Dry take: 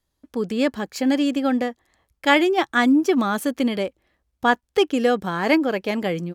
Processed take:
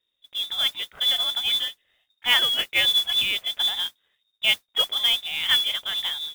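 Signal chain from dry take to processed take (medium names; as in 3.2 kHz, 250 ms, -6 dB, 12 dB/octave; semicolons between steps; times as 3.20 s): sawtooth pitch modulation -2.5 st, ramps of 797 ms; frequency inversion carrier 3.7 kHz; modulation noise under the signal 16 dB; trim -2.5 dB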